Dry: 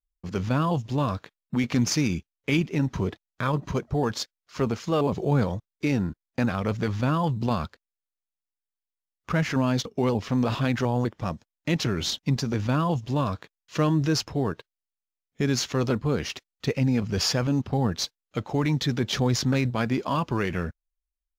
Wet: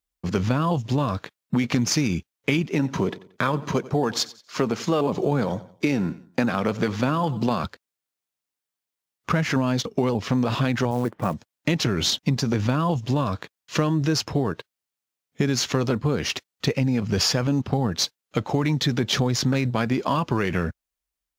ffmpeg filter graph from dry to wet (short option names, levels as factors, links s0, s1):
-filter_complex "[0:a]asettb=1/sr,asplit=3[s0][s1][s2];[s0]atrim=end=2.694[s3];[s1]atrim=start=2.69:end=7.64,asetpts=PTS-STARTPTS,afade=t=in:d=0.004:c=qsin,afade=t=out:st=4.946:d=0.004:c=qsin,highpass=160,aecho=1:1:90|180|270:0.1|0.034|0.0116,atrim=end_sample=218295[s4];[s2]atrim=start=7.636[s5];[s3][s4]acrossfade=d=0.004:c1=hsin:c2=qsin[s6];[s6][s5]acrossfade=d=0.004:c1=qsin:c2=hsin,asettb=1/sr,asplit=3[s7][s8][s9];[s7]atrim=end=10.914[s10];[s8]atrim=start=10.91:end=11.34,asetpts=PTS-STARTPTS,afade=t=in:d=0.004:c=qsin,afade=t=out:st=0.426:d=0.004:c=qsin,lowpass=2000,equalizer=f=76:t=o:w=0.73:g=-13.5,acrusher=bits=6:mode=log:mix=0:aa=0.000001[s11];[s9]atrim=start=11.336[s12];[s10][s11]acrossfade=d=0.004:c1=hsin:c2=qsin[s13];[s13][s12]acrossfade=d=0.004:c1=qsin:c2=hsin,highpass=81,acompressor=threshold=0.0447:ratio=6,volume=2.66"